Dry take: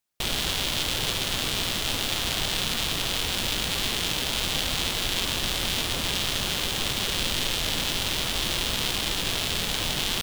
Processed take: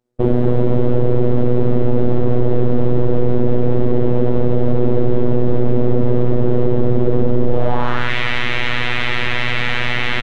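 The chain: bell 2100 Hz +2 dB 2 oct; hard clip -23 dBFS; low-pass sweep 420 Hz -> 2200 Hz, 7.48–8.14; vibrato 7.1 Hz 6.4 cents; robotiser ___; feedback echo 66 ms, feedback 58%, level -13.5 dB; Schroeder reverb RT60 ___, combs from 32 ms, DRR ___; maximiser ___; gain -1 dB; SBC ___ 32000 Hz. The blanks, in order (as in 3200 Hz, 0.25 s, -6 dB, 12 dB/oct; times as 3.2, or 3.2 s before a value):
122 Hz, 2.9 s, 14.5 dB, +21 dB, 128 kbps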